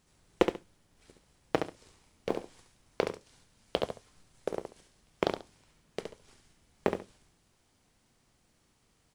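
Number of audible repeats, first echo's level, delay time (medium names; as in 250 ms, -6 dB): 2, -6.5 dB, 69 ms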